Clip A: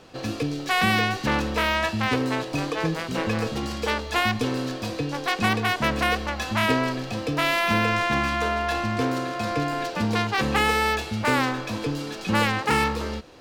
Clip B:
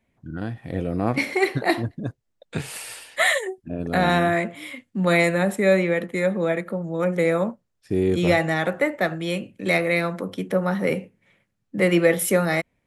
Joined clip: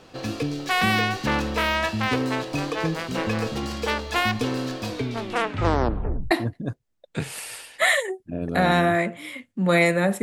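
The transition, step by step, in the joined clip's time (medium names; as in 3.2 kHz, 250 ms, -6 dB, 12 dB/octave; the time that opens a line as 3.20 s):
clip A
4.88 s: tape stop 1.43 s
6.31 s: go over to clip B from 1.69 s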